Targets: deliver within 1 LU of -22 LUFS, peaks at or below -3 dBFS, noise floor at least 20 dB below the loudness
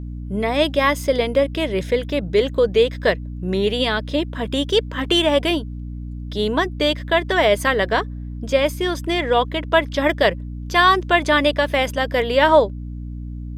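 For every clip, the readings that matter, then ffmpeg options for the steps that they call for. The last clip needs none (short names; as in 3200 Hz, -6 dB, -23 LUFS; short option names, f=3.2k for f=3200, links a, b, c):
hum 60 Hz; harmonics up to 300 Hz; hum level -27 dBFS; loudness -19.0 LUFS; peak -2.5 dBFS; loudness target -22.0 LUFS
-> -af "bandreject=f=60:t=h:w=4,bandreject=f=120:t=h:w=4,bandreject=f=180:t=h:w=4,bandreject=f=240:t=h:w=4,bandreject=f=300:t=h:w=4"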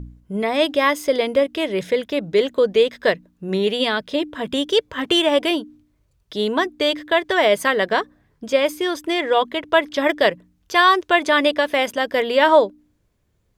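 hum none; loudness -19.5 LUFS; peak -2.5 dBFS; loudness target -22.0 LUFS
-> -af "volume=-2.5dB"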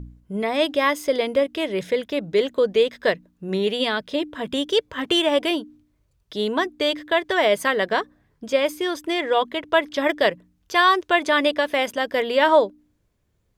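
loudness -22.0 LUFS; peak -5.0 dBFS; noise floor -67 dBFS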